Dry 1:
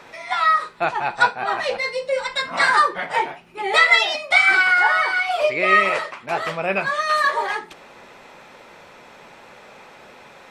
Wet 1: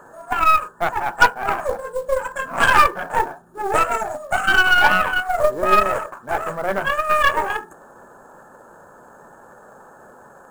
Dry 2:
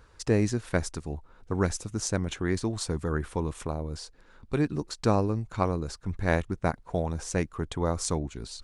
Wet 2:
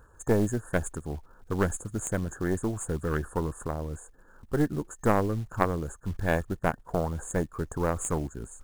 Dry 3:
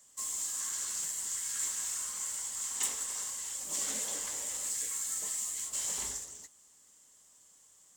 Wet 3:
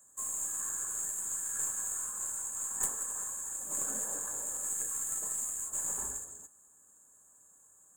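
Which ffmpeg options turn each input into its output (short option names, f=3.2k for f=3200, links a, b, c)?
-af "afftfilt=real='re*(1-between(b*sr/4096,1800,6400))':imag='im*(1-between(b*sr/4096,1800,6400))':win_size=4096:overlap=0.75,aeval=exprs='0.708*(cos(1*acos(clip(val(0)/0.708,-1,1)))-cos(1*PI/2))+0.00447*(cos(3*acos(clip(val(0)/0.708,-1,1)))-cos(3*PI/2))+0.0282*(cos(5*acos(clip(val(0)/0.708,-1,1)))-cos(5*PI/2))+0.0891*(cos(6*acos(clip(val(0)/0.708,-1,1)))-cos(6*PI/2))+0.0398*(cos(7*acos(clip(val(0)/0.708,-1,1)))-cos(7*PI/2))':c=same,acrusher=bits=6:mode=log:mix=0:aa=0.000001,volume=2.5dB"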